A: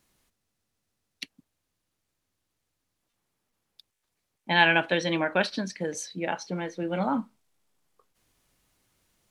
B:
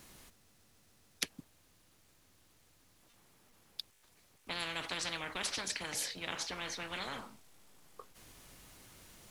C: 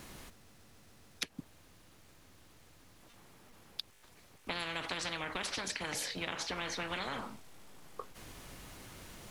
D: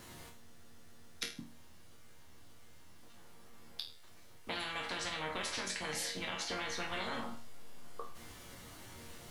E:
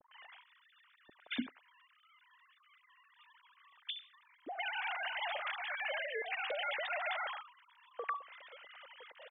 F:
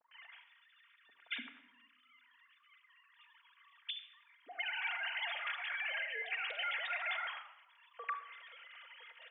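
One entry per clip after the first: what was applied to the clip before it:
every bin compressed towards the loudest bin 10 to 1; level −8 dB
high-shelf EQ 3,800 Hz −6.5 dB; downward compressor 6 to 1, threshold −43 dBFS, peak gain reduction 11 dB; level +8.5 dB
notch filter 2,500 Hz, Q 22; resonators tuned to a chord D#2 minor, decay 0.39 s; level +12 dB
three sine waves on the formant tracks; multiband delay without the direct sound lows, highs 100 ms, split 850 Hz; level +1 dB
resonant band-pass 2,300 Hz, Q 1.1; rectangular room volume 3,900 cubic metres, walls furnished, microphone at 1.7 metres; level +1 dB

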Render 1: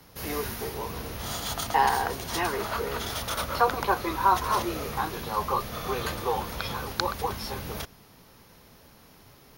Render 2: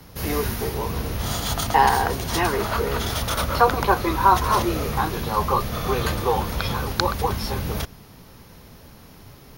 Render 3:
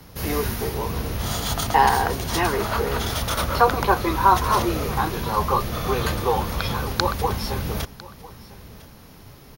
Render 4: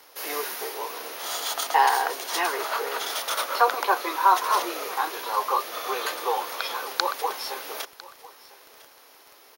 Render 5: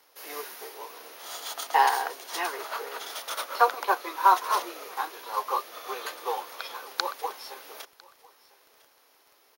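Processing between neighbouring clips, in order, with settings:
low-shelf EQ 230 Hz +7.5 dB; level +5 dB
single-tap delay 1,002 ms −20 dB
Bessel high-pass filter 600 Hz, order 8; surface crackle 20 per second −34 dBFS; level −1 dB
expander for the loud parts 1.5 to 1, over −33 dBFS

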